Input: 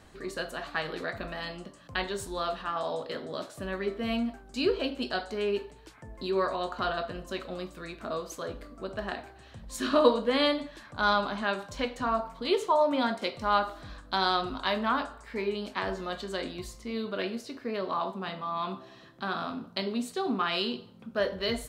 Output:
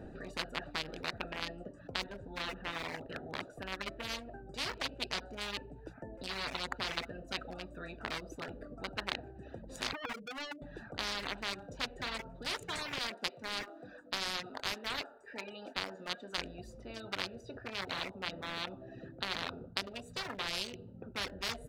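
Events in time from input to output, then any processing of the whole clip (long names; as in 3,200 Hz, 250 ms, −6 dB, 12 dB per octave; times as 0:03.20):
0:02.06–0:03.41: low-pass filter 2,400 Hz
0:09.93–0:10.62: expanding power law on the bin magnitudes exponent 3.7
0:12.98–0:16.38: high-pass filter 540 Hz
whole clip: adaptive Wiener filter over 41 samples; reverb reduction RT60 0.53 s; every bin compressed towards the loudest bin 10 to 1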